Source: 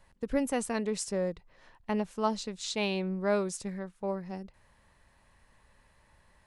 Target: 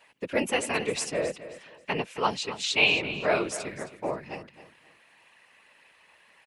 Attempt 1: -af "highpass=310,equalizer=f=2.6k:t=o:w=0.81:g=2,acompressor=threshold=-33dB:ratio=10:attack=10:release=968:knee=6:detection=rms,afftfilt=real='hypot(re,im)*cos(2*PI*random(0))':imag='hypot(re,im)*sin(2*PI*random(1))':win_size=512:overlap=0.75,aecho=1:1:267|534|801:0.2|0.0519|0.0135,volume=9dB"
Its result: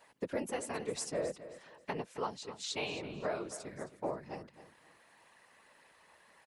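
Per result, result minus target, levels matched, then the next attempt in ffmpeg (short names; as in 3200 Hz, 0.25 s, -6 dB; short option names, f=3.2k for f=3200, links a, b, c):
compressor: peak gain reduction +13 dB; 2000 Hz band -5.5 dB
-af "highpass=310,equalizer=f=2.6k:t=o:w=0.81:g=2,afftfilt=real='hypot(re,im)*cos(2*PI*random(0))':imag='hypot(re,im)*sin(2*PI*random(1))':win_size=512:overlap=0.75,aecho=1:1:267|534|801:0.2|0.0519|0.0135,volume=9dB"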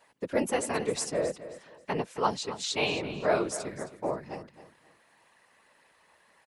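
2000 Hz band -5.5 dB
-af "highpass=310,equalizer=f=2.6k:t=o:w=0.81:g=13.5,afftfilt=real='hypot(re,im)*cos(2*PI*random(0))':imag='hypot(re,im)*sin(2*PI*random(1))':win_size=512:overlap=0.75,aecho=1:1:267|534|801:0.2|0.0519|0.0135,volume=9dB"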